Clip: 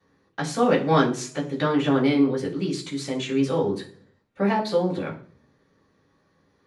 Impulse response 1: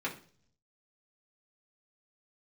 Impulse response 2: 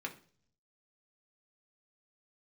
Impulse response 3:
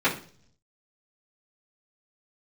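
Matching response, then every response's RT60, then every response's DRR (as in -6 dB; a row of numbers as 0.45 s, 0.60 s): 3; 0.45 s, 0.45 s, 0.45 s; -5.5 dB, 0.5 dB, -13.0 dB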